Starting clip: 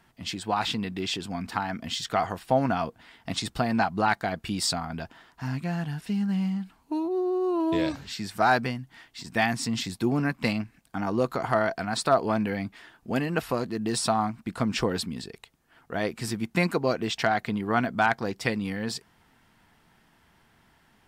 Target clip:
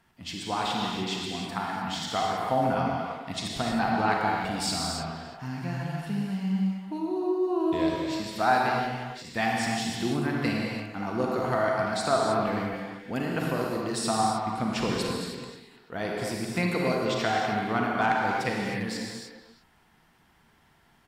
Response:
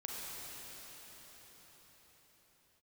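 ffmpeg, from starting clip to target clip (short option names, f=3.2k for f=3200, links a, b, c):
-filter_complex "[0:a]asplit=2[a][b];[b]adelay=340,highpass=300,lowpass=3.4k,asoftclip=type=hard:threshold=-18dB,volume=-10dB[c];[a][c]amix=inputs=2:normalize=0[d];[1:a]atrim=start_sample=2205,afade=t=out:st=0.34:d=0.01,atrim=end_sample=15435,asetrate=40131,aresample=44100[e];[d][e]afir=irnorm=-1:irlink=0"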